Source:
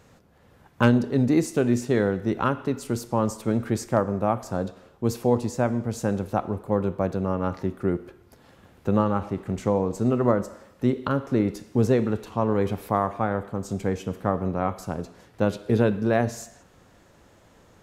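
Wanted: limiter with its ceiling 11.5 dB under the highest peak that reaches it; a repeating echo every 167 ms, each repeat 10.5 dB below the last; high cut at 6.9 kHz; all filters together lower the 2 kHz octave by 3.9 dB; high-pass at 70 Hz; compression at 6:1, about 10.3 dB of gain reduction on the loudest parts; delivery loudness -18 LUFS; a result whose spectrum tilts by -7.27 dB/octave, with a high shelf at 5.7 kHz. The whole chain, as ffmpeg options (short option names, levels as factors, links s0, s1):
-af "highpass=70,lowpass=6900,equalizer=f=2000:t=o:g=-5,highshelf=f=5700:g=-7,acompressor=threshold=0.0501:ratio=6,alimiter=level_in=1.06:limit=0.0631:level=0:latency=1,volume=0.944,aecho=1:1:167|334|501:0.299|0.0896|0.0269,volume=7.94"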